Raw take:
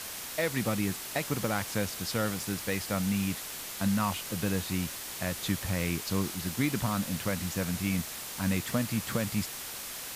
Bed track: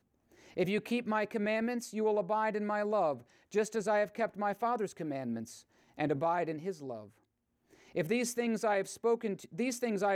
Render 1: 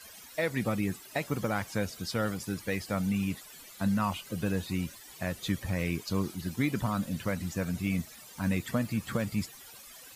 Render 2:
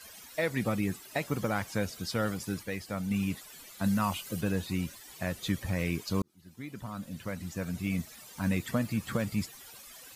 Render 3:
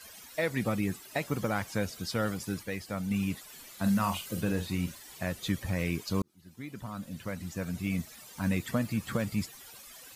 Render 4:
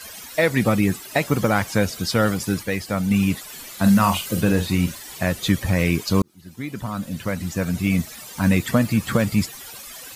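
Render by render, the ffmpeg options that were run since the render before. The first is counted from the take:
ffmpeg -i in.wav -af "afftdn=noise_reduction=16:noise_floor=-40" out.wav
ffmpeg -i in.wav -filter_complex "[0:a]asettb=1/sr,asplit=3[link_01][link_02][link_03];[link_01]atrim=end=3.844[link_04];[link_02]atrim=start=3.84:end=4.41,asetpts=PTS-STARTPTS,afade=type=in:duration=0.004:curve=qsin,afade=type=out:start_time=0.566:duration=0.004:curve=qsin,highshelf=frequency=5600:gain=6.5[link_05];[link_03]atrim=start=4.406[link_06];[link_04][link_05]acrossfade=duration=0.004:curve1=hsin:curve2=qsin[link_07];[link_07][link_06]acrossfade=duration=0.004:curve1=qsin:curve2=hsin,asplit=4[link_08][link_09][link_10][link_11];[link_08]atrim=end=2.632[link_12];[link_09]atrim=start=2.628:end=3.112,asetpts=PTS-STARTPTS,volume=-4dB[link_13];[link_10]atrim=start=3.108:end=6.22,asetpts=PTS-STARTPTS,afade=type=out:start_time=3.108:duration=0.004:curve=hsin[link_14];[link_11]atrim=start=6.22,asetpts=PTS-STARTPTS,afade=type=in:duration=1.99[link_15];[link_12][link_13]acrossfade=duration=0.004:curve1=hsin:curve2=hsin[link_16];[link_14][link_15]concat=n=2:v=0:a=1[link_17];[link_16][link_17]acrossfade=duration=0.004:curve1=hsin:curve2=hsin" out.wav
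ffmpeg -i in.wav -filter_complex "[0:a]asettb=1/sr,asplit=3[link_01][link_02][link_03];[link_01]atrim=end=3.444[link_04];[link_02]atrim=start=3.44:end=5.19,asetpts=PTS-STARTPTS,afade=type=in:duration=0.004:curve=qsin,afade=type=out:start_time=1.746:duration=0.004:curve=qsin,asplit=2[link_05][link_06];[link_06]adelay=45,volume=-9dB[link_07];[link_05][link_07]amix=inputs=2:normalize=0,atrim=end_sample=77175[link_08];[link_03]atrim=start=5.186[link_09];[link_04][link_08]acrossfade=duration=0.004:curve1=hsin:curve2=qsin[link_10];[link_10][link_09]acrossfade=duration=0.004:curve1=qsin:curve2=hsin" out.wav
ffmpeg -i in.wav -af "volume=11.5dB" out.wav

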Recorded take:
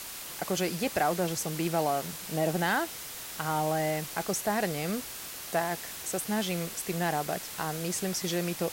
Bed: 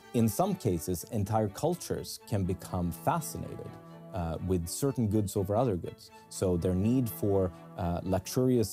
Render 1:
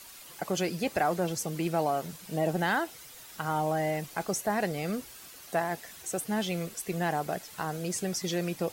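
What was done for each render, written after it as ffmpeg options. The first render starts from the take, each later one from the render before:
ffmpeg -i in.wav -af "afftdn=noise_reduction=10:noise_floor=-41" out.wav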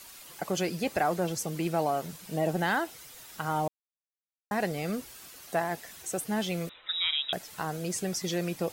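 ffmpeg -i in.wav -filter_complex "[0:a]asettb=1/sr,asplit=3[link_01][link_02][link_03];[link_01]atrim=end=6.694[link_04];[link_02]atrim=start=6.69:end=7.33,asetpts=PTS-STARTPTS,afade=type=in:duration=0.004:curve=qsin,afade=type=out:start_time=0.636:duration=0.004:curve=qsin,lowpass=frequency=3400:width_type=q:width=0.5098,lowpass=frequency=3400:width_type=q:width=0.6013,lowpass=frequency=3400:width_type=q:width=0.9,lowpass=frequency=3400:width_type=q:width=2.563,afreqshift=-4000[link_05];[link_03]atrim=start=7.326[link_06];[link_04][link_05]acrossfade=duration=0.004:curve1=hsin:curve2=qsin[link_07];[link_07][link_06]acrossfade=duration=0.004:curve1=qsin:curve2=hsin,asplit=3[link_08][link_09][link_10];[link_08]atrim=end=3.68,asetpts=PTS-STARTPTS,afade=type=out:start_time=3.676:duration=0.004:curve=hsin[link_11];[link_09]atrim=start=3.68:end=4.51,asetpts=PTS-STARTPTS,volume=0[link_12];[link_10]atrim=start=4.51,asetpts=PTS-STARTPTS,afade=type=in:duration=0.004:curve=hsin[link_13];[link_11][link_12][link_13]concat=n=3:v=0:a=1" out.wav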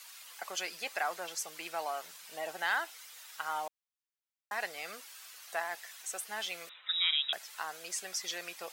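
ffmpeg -i in.wav -af "highpass=1100,equalizer=frequency=13000:width_type=o:width=1.3:gain=-4.5" out.wav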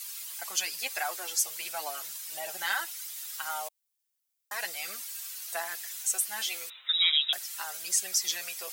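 ffmpeg -i in.wav -af "crystalizer=i=4.5:c=0,flanger=delay=5:depth=3.3:regen=-1:speed=0.39:shape=sinusoidal" out.wav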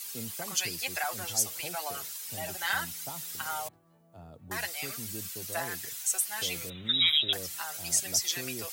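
ffmpeg -i in.wav -i bed.wav -filter_complex "[1:a]volume=-15.5dB[link_01];[0:a][link_01]amix=inputs=2:normalize=0" out.wav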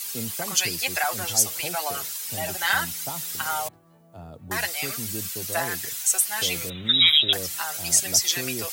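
ffmpeg -i in.wav -af "volume=7.5dB" out.wav

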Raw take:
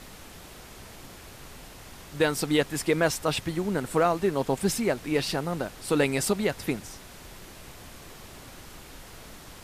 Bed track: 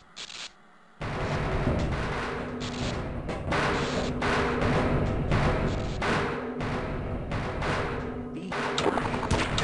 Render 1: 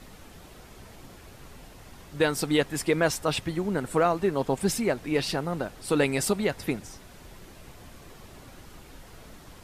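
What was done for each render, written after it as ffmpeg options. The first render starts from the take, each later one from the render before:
ffmpeg -i in.wav -af "afftdn=noise_reduction=6:noise_floor=-47" out.wav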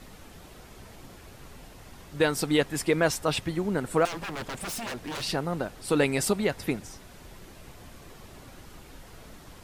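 ffmpeg -i in.wav -filter_complex "[0:a]asettb=1/sr,asplit=3[link_01][link_02][link_03];[link_01]atrim=end=4.054[link_04];[link_02]atrim=start=4.05:end=5.23,asetpts=PTS-STARTPTS,afade=type=in:duration=0.004:curve=qsin,afade=type=out:start_time=1.176:duration=0.004:curve=qsin,aeval=exprs='0.0335*(abs(mod(val(0)/0.0335+3,4)-2)-1)':channel_layout=same[link_05];[link_03]atrim=start=5.226[link_06];[link_04][link_05]acrossfade=duration=0.004:curve1=hsin:curve2=qsin[link_07];[link_07][link_06]acrossfade=duration=0.004:curve1=qsin:curve2=hsin" out.wav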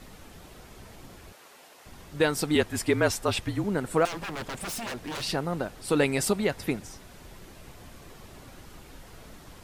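ffmpeg -i in.wav -filter_complex "[0:a]asettb=1/sr,asplit=3[link_01][link_02][link_03];[link_01]atrim=end=1.324[link_04];[link_02]atrim=start=1.32:end=1.86,asetpts=PTS-STARTPTS,afade=type=in:duration=0.004:curve=qsin,afade=type=out:start_time=0.536:duration=0.004:curve=qsin,highpass=490[link_05];[link_03]atrim=start=1.856[link_06];[link_04][link_05]acrossfade=duration=0.004:curve1=hsin:curve2=qsin[link_07];[link_07][link_06]acrossfade=duration=0.004:curve1=qsin:curve2=hsin,asettb=1/sr,asplit=3[link_08][link_09][link_10];[link_08]atrim=end=2.554[link_11];[link_09]atrim=start=2.55:end=3.64,asetpts=PTS-STARTPTS,afade=type=in:duration=0.004:curve=qsin,afade=type=out:start_time=1.086:duration=0.004:curve=qsin,afreqshift=-44[link_12];[link_10]atrim=start=3.636[link_13];[link_11][link_12]acrossfade=duration=0.004:curve1=hsin:curve2=qsin[link_14];[link_14][link_13]acrossfade=duration=0.004:curve1=qsin:curve2=hsin" out.wav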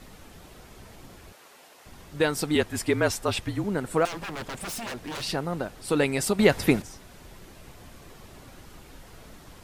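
ffmpeg -i in.wav -filter_complex "[0:a]asplit=3[link_01][link_02][link_03];[link_01]atrim=end=6.392[link_04];[link_02]atrim=start=6.388:end=6.822,asetpts=PTS-STARTPTS,volume=8dB[link_05];[link_03]atrim=start=6.818[link_06];[link_04][link_05]acrossfade=duration=0.004:curve1=hsin:curve2=hsin[link_07];[link_07][link_06]acrossfade=duration=0.004:curve1=hsin:curve2=hsin" out.wav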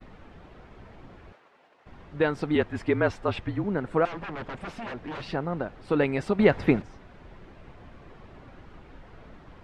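ffmpeg -i in.wav -af "lowpass=2200,agate=range=-33dB:threshold=-49dB:ratio=3:detection=peak" out.wav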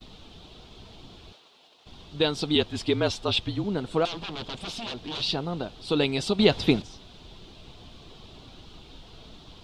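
ffmpeg -i in.wav -af "highshelf=frequency=2600:width_type=q:width=3:gain=11.5,bandreject=frequency=550:width=12" out.wav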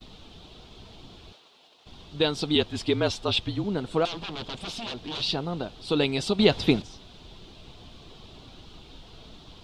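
ffmpeg -i in.wav -af anull out.wav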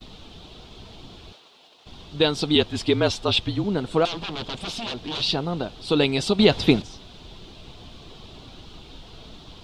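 ffmpeg -i in.wav -af "volume=4dB,alimiter=limit=-3dB:level=0:latency=1" out.wav

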